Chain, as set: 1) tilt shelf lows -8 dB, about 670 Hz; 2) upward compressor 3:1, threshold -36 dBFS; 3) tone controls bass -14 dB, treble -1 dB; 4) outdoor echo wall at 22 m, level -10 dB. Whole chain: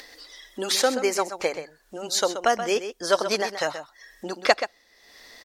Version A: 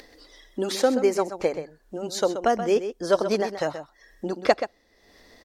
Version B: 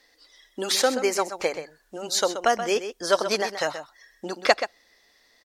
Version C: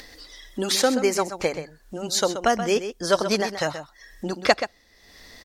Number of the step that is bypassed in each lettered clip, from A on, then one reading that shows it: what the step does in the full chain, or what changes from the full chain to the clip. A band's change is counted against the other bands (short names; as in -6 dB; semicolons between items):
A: 1, 125 Hz band +10.5 dB; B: 2, momentary loudness spread change -1 LU; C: 3, 125 Hz band +9.5 dB